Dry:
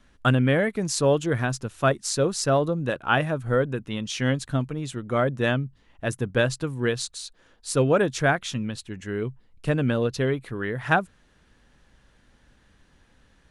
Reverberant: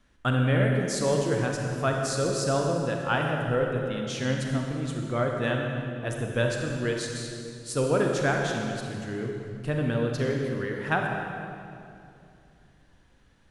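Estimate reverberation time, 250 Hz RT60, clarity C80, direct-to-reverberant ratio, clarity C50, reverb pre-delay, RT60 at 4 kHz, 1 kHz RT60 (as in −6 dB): 2.6 s, 3.2 s, 2.5 dB, 0.5 dB, 1.5 dB, 32 ms, 1.9 s, 2.4 s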